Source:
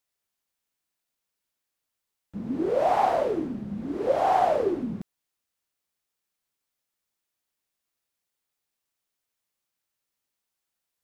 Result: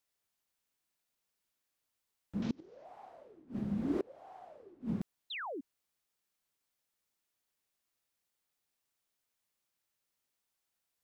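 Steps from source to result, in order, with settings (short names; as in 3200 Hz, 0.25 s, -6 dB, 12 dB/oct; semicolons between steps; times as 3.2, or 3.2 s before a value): 2.42–2.85 delta modulation 32 kbps, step -38 dBFS; flipped gate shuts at -21 dBFS, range -30 dB; 5.3–5.61 painted sound fall 240–4200 Hz -39 dBFS; gain -1.5 dB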